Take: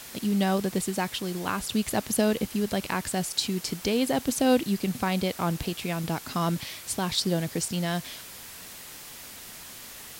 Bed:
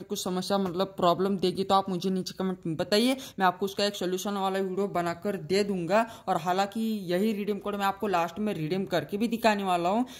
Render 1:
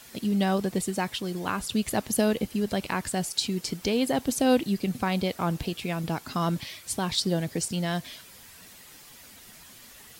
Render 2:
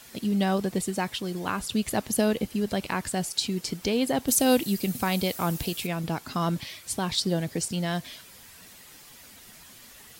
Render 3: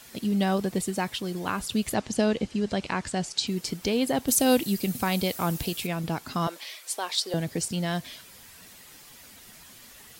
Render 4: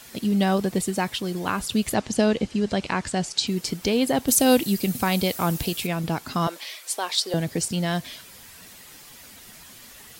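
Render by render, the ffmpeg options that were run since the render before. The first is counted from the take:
-af "afftdn=nr=8:nf=-44"
-filter_complex "[0:a]asettb=1/sr,asplit=3[a][b][c];[a]atrim=end=4.284[d];[b]atrim=start=4.28:end=5.87,asetpts=PTS-STARTPTS,afade=t=in:d=0.004:c=qsin,afade=t=out:st=1.586:d=0.004:c=qsin,aemphasis=mode=production:type=50kf[e];[c]atrim=start=5.866[f];[d][e]acrossfade=d=0.004:c1=hsin:c2=qsin[g];[g][f]acrossfade=d=0.004:c1=qsin:c2=hsin"
-filter_complex "[0:a]asettb=1/sr,asplit=3[a][b][c];[a]atrim=end=1.944[d];[b]atrim=start=1.94:end=3.47,asetpts=PTS-STARTPTS,afade=t=in:d=0.004:c=qsin,afade=t=out:st=1.526:d=0.004:c=qsin,lowpass=f=7.8k:w=0.5412,lowpass=f=7.8k:w=1.3066[e];[c]atrim=start=3.466[f];[d][e]acrossfade=d=0.004:c1=hsin:c2=qsin[g];[g][f]acrossfade=d=0.004:c1=qsin:c2=hsin,asettb=1/sr,asplit=3[h][i][j];[h]atrim=end=6.474[k];[i]atrim=start=6.47:end=7.34,asetpts=PTS-STARTPTS,afade=t=in:d=0.004:c=qsin,afade=t=out:st=0.866:d=0.004:c=qsin,highpass=f=430:w=0.5412,highpass=f=430:w=1.3066[l];[j]atrim=start=7.336[m];[k][l]acrossfade=d=0.004:c1=hsin:c2=qsin[n];[n][m]acrossfade=d=0.004:c1=qsin:c2=hsin"
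-af "volume=3.5dB"

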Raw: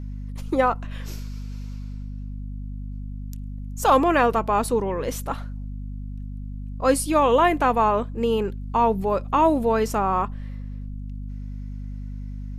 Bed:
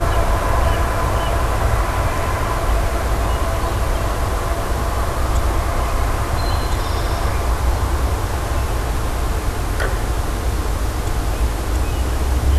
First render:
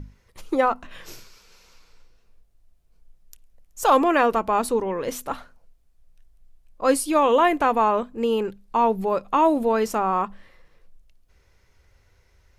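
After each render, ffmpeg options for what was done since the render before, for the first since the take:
-af "bandreject=f=50:t=h:w=6,bandreject=f=100:t=h:w=6,bandreject=f=150:t=h:w=6,bandreject=f=200:t=h:w=6,bandreject=f=250:t=h:w=6"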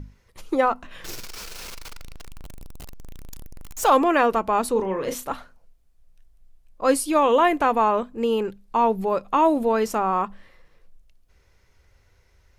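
-filter_complex "[0:a]asettb=1/sr,asplit=3[a][b][c];[a]atrim=end=1.044[d];[b]atrim=start=1.04:end=3.89,asetpts=PTS-STARTPTS,afade=t=in:d=0.004:c=qsin,afade=t=out:st=2.846:d=0.004:c=qsin,aeval=exprs='val(0)+0.5*0.0266*sgn(val(0))':c=same[e];[c]atrim=start=3.886[f];[d][e]acrossfade=d=0.004:c1=hsin:c2=qsin[g];[g][f]acrossfade=d=0.004:c1=qsin:c2=hsin,asettb=1/sr,asplit=3[h][i][j];[h]atrim=end=4.724[k];[i]atrim=start=4.72:end=5.29,asetpts=PTS-STARTPTS,afade=t=in:d=0.004:c=qsin,afade=t=out:st=0.566:d=0.004:c=qsin,asplit=2[l][m];[m]adelay=37,volume=-7.5dB[n];[l][n]amix=inputs=2:normalize=0,atrim=end_sample=25137[o];[j]atrim=start=5.286[p];[k][o]acrossfade=d=0.004:c1=hsin:c2=qsin[q];[q][p]acrossfade=d=0.004:c1=qsin:c2=hsin"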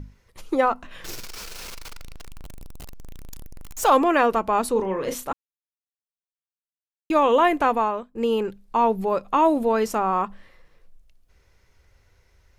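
-filter_complex "[0:a]asplit=4[a][b][c][d];[a]atrim=end=5.33,asetpts=PTS-STARTPTS,afade=t=out:st=5.326:d=0.004:c=hsin[e];[b]atrim=start=5.33:end=7.1,asetpts=PTS-STARTPTS,volume=0[f];[c]atrim=start=7.1:end=8.15,asetpts=PTS-STARTPTS,afade=t=in:d=0.004:c=hsin,afade=t=out:st=0.59:d=0.46:silence=0.0891251[g];[d]atrim=start=8.15,asetpts=PTS-STARTPTS,afade=t=in:d=0.004:c=hsin:silence=0.0891251[h];[e][f][g][h]concat=n=4:v=0:a=1"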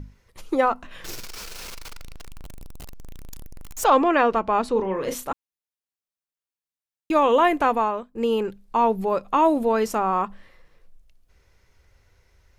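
-filter_complex "[0:a]asplit=3[a][b][c];[a]afade=t=out:st=3.83:d=0.02[d];[b]lowpass=5k,afade=t=in:st=3.83:d=0.02,afade=t=out:st=4.93:d=0.02[e];[c]afade=t=in:st=4.93:d=0.02[f];[d][e][f]amix=inputs=3:normalize=0"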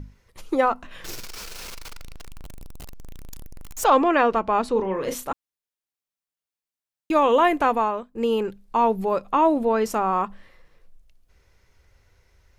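-filter_complex "[0:a]asettb=1/sr,asplit=3[a][b][c];[a]atrim=end=9.324[d];[b]atrim=start=9.32:end=9.86,asetpts=PTS-STARTPTS,afade=t=in:d=0.004:c=qsin,afade=t=out:st=0.536:d=0.004:c=qsin,lowpass=f=3.8k:p=1[e];[c]atrim=start=9.856[f];[d][e]acrossfade=d=0.004:c1=hsin:c2=qsin[g];[g][f]acrossfade=d=0.004:c1=qsin:c2=hsin"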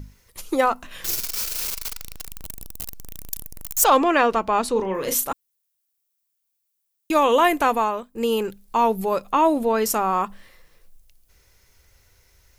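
-af "aemphasis=mode=production:type=75kf"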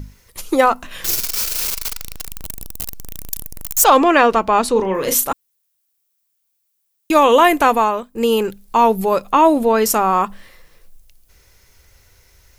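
-af "alimiter=level_in=6dB:limit=-1dB:release=50:level=0:latency=1"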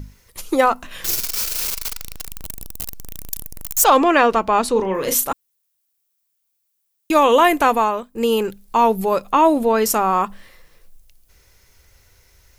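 -af "volume=-2dB"

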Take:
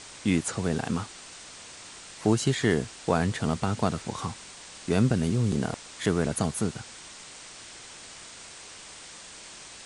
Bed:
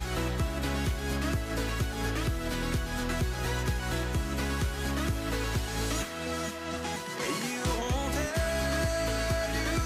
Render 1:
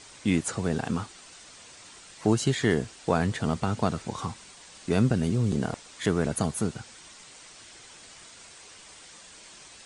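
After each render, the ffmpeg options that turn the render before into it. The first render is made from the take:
-af "afftdn=nr=6:nf=-46"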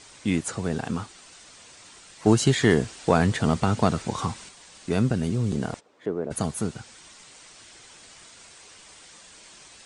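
-filter_complex "[0:a]asettb=1/sr,asplit=3[a][b][c];[a]atrim=end=2.264[d];[b]atrim=start=2.26:end=4.49,asetpts=PTS-STARTPTS,afade=t=in:d=0.004:c=qsin,afade=t=out:st=2.226:d=0.004:c=qsin,acontrast=26[e];[c]atrim=start=4.486[f];[d][e]acrossfade=d=0.004:c1=hsin:c2=qsin[g];[g][f]acrossfade=d=0.004:c1=qsin:c2=hsin,asplit=3[h][i][j];[h]afade=t=out:st=5.79:d=0.02[k];[i]bandpass=f=450:t=q:w=1.3,afade=t=in:st=5.79:d=0.02,afade=t=out:st=6.3:d=0.02[l];[j]afade=t=in:st=6.3:d=0.02[m];[k][l][m]amix=inputs=3:normalize=0"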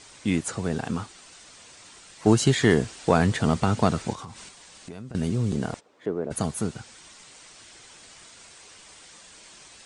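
-filter_complex "[0:a]asettb=1/sr,asplit=3[a][b][c];[a]atrim=end=4.134[d];[b]atrim=start=4.13:end=5.15,asetpts=PTS-STARTPTS,afade=t=in:d=0.004:c=qsin,afade=t=out:st=1.016:d=0.004:c=qsin,acompressor=threshold=-37dB:ratio=5:attack=3.2:release=140:knee=1:detection=peak[e];[c]atrim=start=5.146[f];[d][e]acrossfade=d=0.004:c1=hsin:c2=qsin[g];[g][f]acrossfade=d=0.004:c1=qsin:c2=hsin"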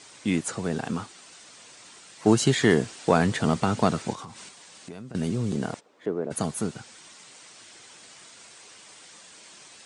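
-af "highpass=130"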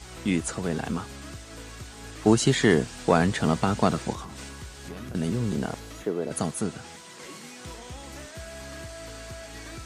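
-filter_complex "[1:a]volume=-11.5dB[a];[0:a][a]amix=inputs=2:normalize=0"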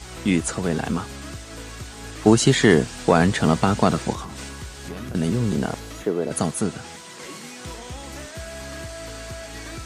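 -af "volume=5dB,alimiter=limit=-3dB:level=0:latency=1"

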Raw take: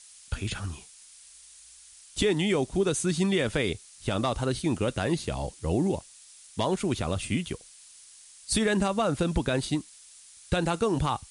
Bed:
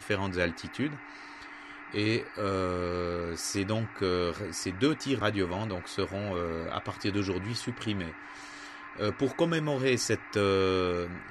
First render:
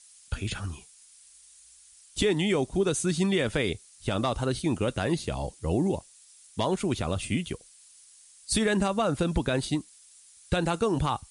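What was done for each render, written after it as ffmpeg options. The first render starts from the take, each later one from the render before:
-af "afftdn=nr=6:nf=-52"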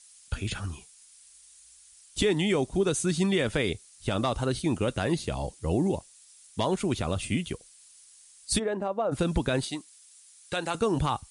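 -filter_complex "[0:a]asplit=3[a][b][c];[a]afade=t=out:st=8.58:d=0.02[d];[b]bandpass=f=590:t=q:w=1.2,afade=t=in:st=8.58:d=0.02,afade=t=out:st=9.11:d=0.02[e];[c]afade=t=in:st=9.11:d=0.02[f];[d][e][f]amix=inputs=3:normalize=0,asettb=1/sr,asplit=3[g][h][i];[g]atrim=end=9.644[j];[h]atrim=start=9.64:end=10.75,asetpts=PTS-STARTPTS,afade=t=in:d=0.004:c=qsin,afade=t=out:st=1.106:d=0.004:c=qsin,highpass=f=620:p=1[k];[i]atrim=start=10.746[l];[j][k]acrossfade=d=0.004:c1=hsin:c2=qsin[m];[m][l]acrossfade=d=0.004:c1=qsin:c2=hsin"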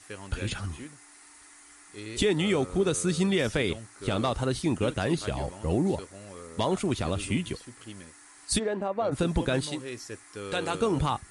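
-filter_complex "[1:a]volume=-12dB[a];[0:a][a]amix=inputs=2:normalize=0"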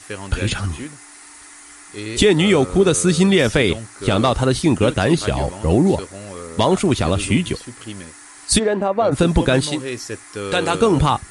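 -af "volume=11dB"

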